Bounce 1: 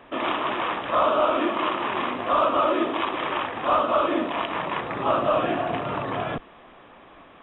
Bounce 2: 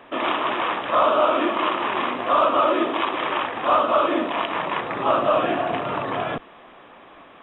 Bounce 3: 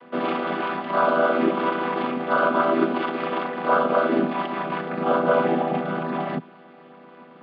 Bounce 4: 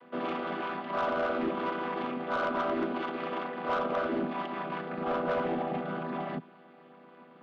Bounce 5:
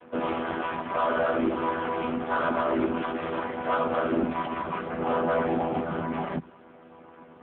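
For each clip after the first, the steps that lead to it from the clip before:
low shelf 140 Hz -9 dB; gain +3 dB
chord vocoder minor triad, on E3
soft clip -16.5 dBFS, distortion -14 dB; gain -7.5 dB
gain +7 dB; AMR-NB 5.15 kbps 8000 Hz

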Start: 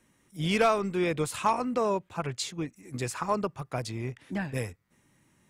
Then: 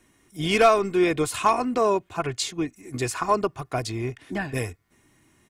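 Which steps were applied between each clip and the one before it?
comb 2.8 ms, depth 45%; gain +5 dB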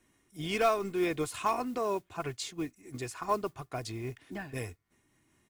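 modulation noise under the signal 26 dB; noise-modulated level, depth 55%; gain -6.5 dB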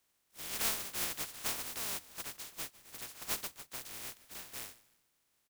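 spectral contrast lowered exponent 0.11; frequency-shifting echo 0.152 s, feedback 35%, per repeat -130 Hz, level -19.5 dB; gain -7 dB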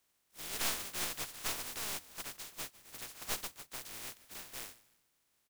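tracing distortion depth 0.064 ms

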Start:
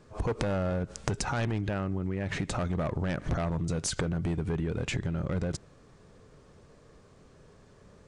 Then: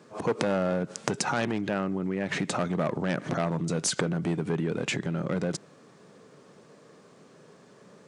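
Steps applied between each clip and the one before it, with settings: HPF 160 Hz 24 dB/oct; gain +4.5 dB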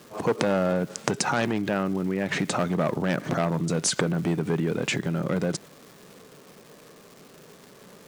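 crackle 570/s -43 dBFS; gain +3 dB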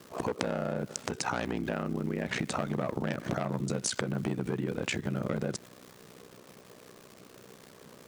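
compressor, threshold -25 dBFS, peak gain reduction 7.5 dB; ring modulator 31 Hz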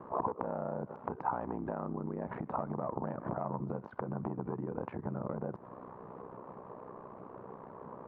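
compressor 10:1, threshold -37 dBFS, peak gain reduction 12 dB; ladder low-pass 1100 Hz, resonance 60%; gain +13.5 dB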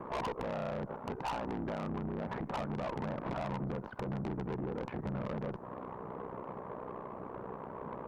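tube stage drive 39 dB, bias 0.35; gain +6.5 dB

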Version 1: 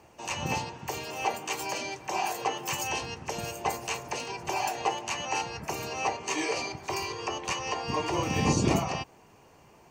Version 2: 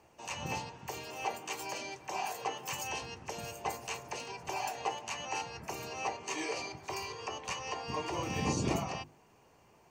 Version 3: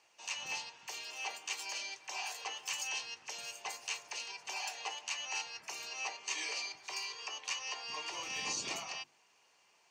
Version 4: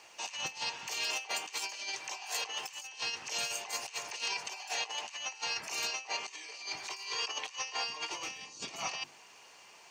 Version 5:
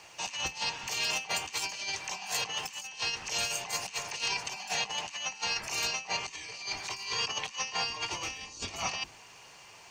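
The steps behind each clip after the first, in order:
notches 50/100/150/200/250/300/350 Hz; gain -6.5 dB
band-pass 4200 Hz, Q 0.89; gain +4.5 dB
negative-ratio compressor -46 dBFS, ratio -0.5; gain +8 dB
octaver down 2 oct, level +2 dB; gain +3.5 dB

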